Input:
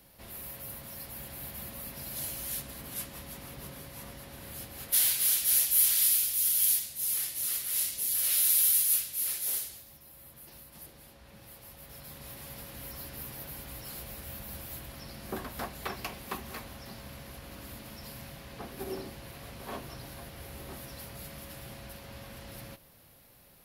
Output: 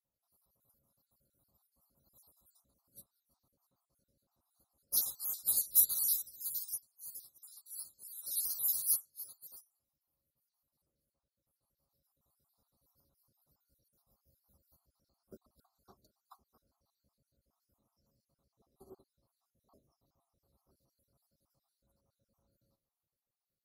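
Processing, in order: random holes in the spectrogram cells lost 55%; elliptic band-stop 1.3–4 kHz, stop band 40 dB; upward expansion 2.5:1, over -45 dBFS; trim +2 dB

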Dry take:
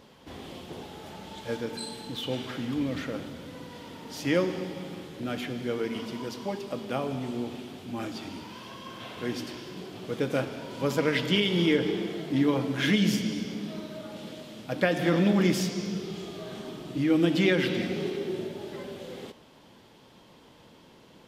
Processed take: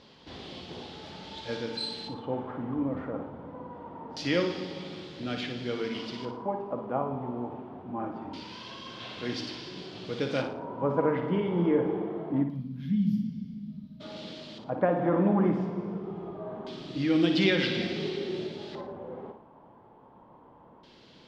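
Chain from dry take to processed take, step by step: time-frequency box 12.43–14.01 s, 260–11000 Hz -29 dB; LFO low-pass square 0.24 Hz 960–4500 Hz; flutter echo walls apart 9.8 m, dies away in 0.43 s; trim -2.5 dB

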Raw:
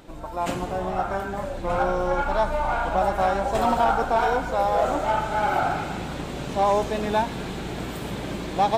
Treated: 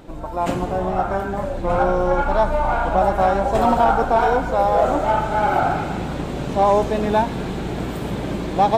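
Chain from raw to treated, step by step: tilt shelf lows +3.5 dB, about 1.3 kHz; trim +3 dB

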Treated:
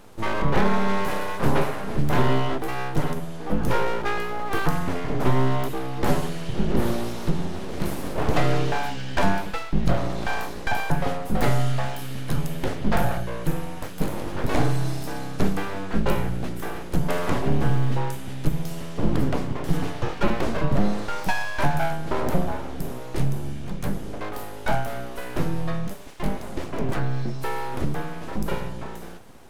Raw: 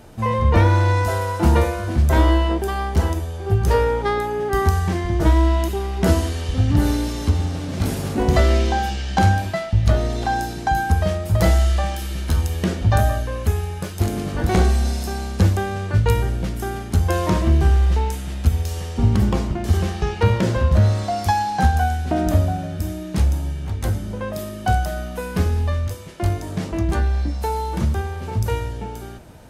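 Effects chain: dynamic bell 6.2 kHz, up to -6 dB, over -47 dBFS, Q 0.83; full-wave rectifier; trim -2 dB

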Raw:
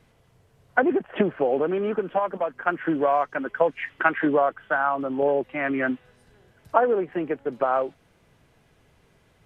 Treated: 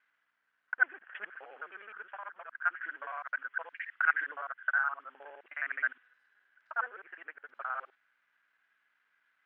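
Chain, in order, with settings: time reversed locally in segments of 52 ms; hum 60 Hz, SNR 24 dB; ladder band-pass 1.7 kHz, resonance 65%

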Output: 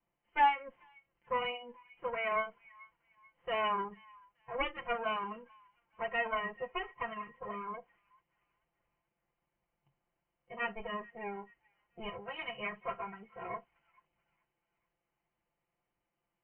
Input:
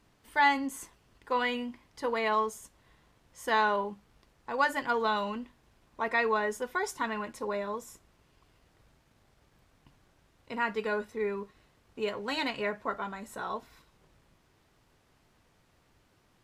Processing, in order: comb filter that takes the minimum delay 5.8 ms; rippled Chebyshev low-pass 3.1 kHz, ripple 6 dB; feedback echo behind a high-pass 435 ms, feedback 46%, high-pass 1.5 kHz, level -16 dB; spectral noise reduction 14 dB

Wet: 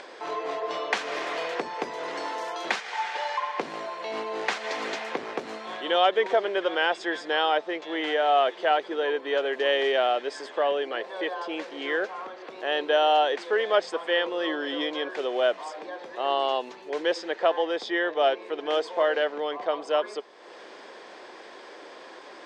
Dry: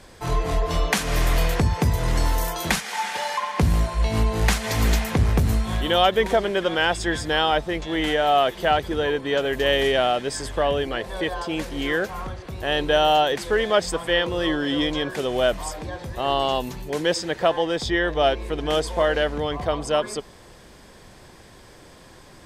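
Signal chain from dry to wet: high-pass 350 Hz 24 dB/octave; treble shelf 11 kHz -8.5 dB; upward compressor, threshold -32 dBFS; distance through air 130 m; trim -2 dB

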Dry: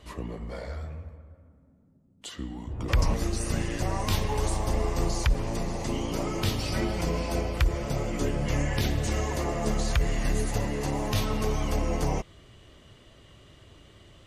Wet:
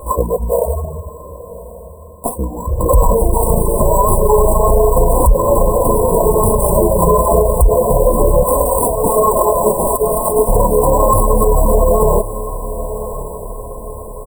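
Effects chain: 8.43–10.49 s: frequency weighting A; reverb removal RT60 0.7 s; bass shelf 290 Hz -8.5 dB; comb 1.9 ms, depth 98%; sample-rate reducer 6.8 kHz, jitter 0%; flange 0.36 Hz, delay 3.7 ms, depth 1.4 ms, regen +20%; brick-wall FIR band-stop 1.1–7.5 kHz; echo that smears into a reverb 1103 ms, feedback 48%, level -15.5 dB; loudness maximiser +27.5 dB; trim -1 dB

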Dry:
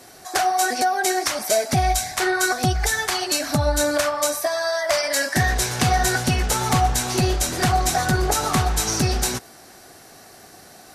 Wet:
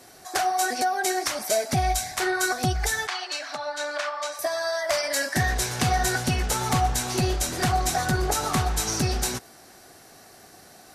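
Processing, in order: 3.07–4.39 s: band-pass 780–4300 Hz; trim -4 dB

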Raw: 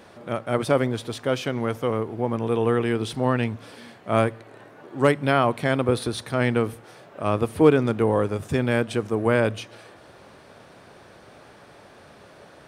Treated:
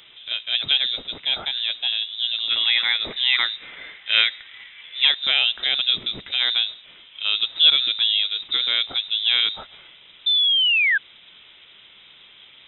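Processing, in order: 2.50–5.05 s: peaking EQ 1.8 kHz +12.5 dB 0.81 oct; 10.26–10.98 s: painted sound rise 240–2300 Hz -18 dBFS; frequency inversion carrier 3.8 kHz

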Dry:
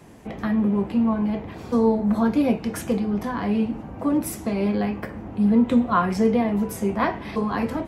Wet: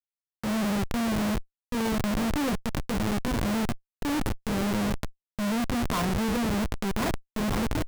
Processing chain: Schmitt trigger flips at -23 dBFS; transient shaper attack -3 dB, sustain +7 dB; trim -3.5 dB

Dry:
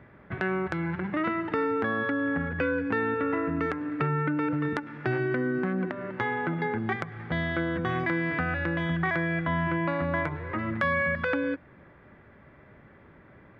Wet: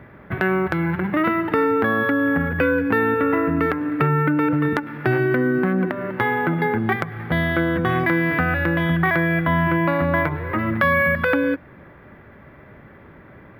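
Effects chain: decimation joined by straight lines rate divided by 3×; trim +8.5 dB

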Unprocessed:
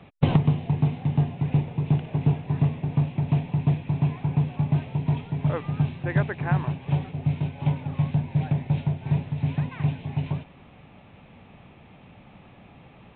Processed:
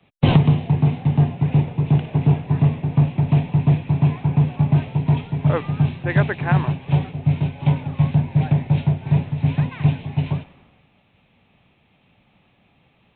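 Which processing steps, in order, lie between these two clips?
loudness maximiser +13.5 dB; three bands expanded up and down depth 70%; trim -6.5 dB

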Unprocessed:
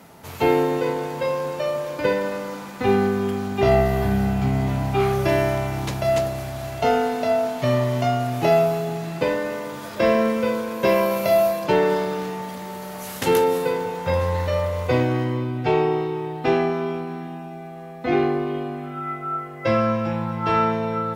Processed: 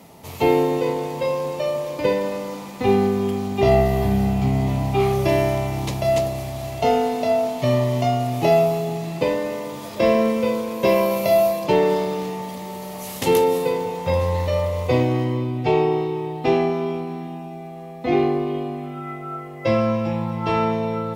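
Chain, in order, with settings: peaking EQ 1.5 kHz -12.5 dB 0.43 oct; trim +1.5 dB

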